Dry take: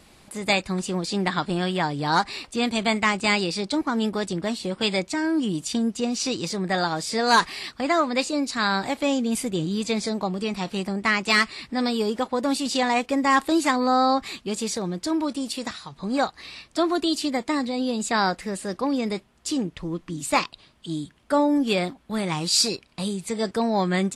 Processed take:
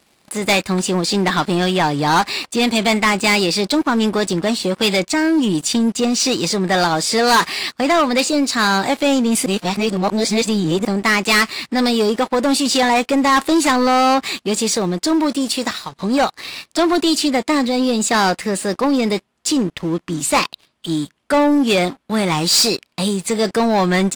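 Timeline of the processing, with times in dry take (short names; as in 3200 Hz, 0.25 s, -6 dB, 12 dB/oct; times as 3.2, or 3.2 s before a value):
9.46–10.85 reverse
whole clip: HPF 180 Hz 6 dB/oct; sample leveller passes 3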